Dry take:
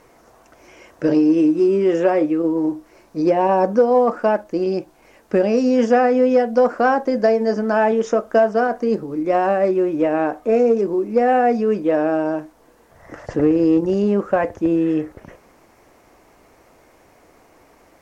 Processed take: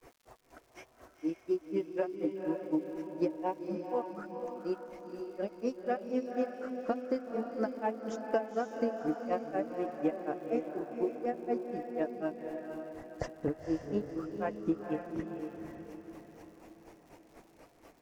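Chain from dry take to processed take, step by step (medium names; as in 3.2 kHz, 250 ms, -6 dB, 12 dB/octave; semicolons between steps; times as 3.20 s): coarse spectral quantiser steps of 15 dB; compression 5:1, threshold -26 dBFS, peak gain reduction 14.5 dB; granulator 131 ms, grains 4.1 per s, pitch spread up and down by 0 st; on a send: echo that smears into a reverb 507 ms, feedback 47%, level -5 dB; on the sum: crackle 200 per s -53 dBFS; trim -1.5 dB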